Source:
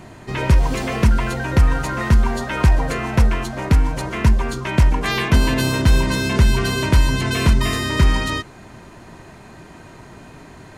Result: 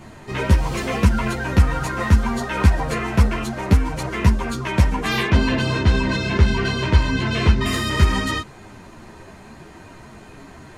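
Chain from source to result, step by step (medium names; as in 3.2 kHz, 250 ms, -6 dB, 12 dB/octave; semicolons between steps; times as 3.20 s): 5.27–7.66 s: low-pass 4.5 kHz 12 dB/octave; three-phase chorus; trim +2.5 dB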